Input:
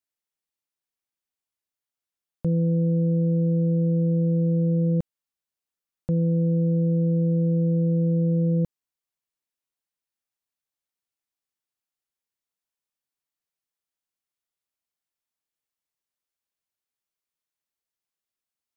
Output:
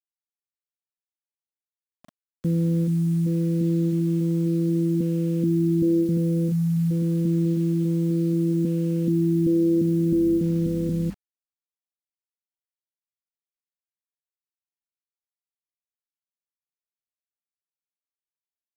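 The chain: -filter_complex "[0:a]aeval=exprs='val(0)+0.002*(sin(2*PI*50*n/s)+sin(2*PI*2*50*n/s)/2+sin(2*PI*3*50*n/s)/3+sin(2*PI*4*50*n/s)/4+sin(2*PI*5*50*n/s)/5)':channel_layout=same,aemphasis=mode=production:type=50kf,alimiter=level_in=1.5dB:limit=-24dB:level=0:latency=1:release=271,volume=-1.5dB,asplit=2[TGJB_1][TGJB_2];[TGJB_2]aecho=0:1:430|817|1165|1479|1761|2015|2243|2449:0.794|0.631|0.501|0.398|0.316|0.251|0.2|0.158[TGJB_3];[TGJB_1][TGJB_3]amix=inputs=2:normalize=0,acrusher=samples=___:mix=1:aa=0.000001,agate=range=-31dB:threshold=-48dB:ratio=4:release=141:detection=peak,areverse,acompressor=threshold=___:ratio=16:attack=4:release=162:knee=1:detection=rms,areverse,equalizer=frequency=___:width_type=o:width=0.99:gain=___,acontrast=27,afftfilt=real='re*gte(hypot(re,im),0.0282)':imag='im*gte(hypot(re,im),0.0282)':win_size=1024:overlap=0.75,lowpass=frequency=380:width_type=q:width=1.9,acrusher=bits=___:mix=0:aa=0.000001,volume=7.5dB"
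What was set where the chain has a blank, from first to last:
7, -40dB, 250, 14.5, 8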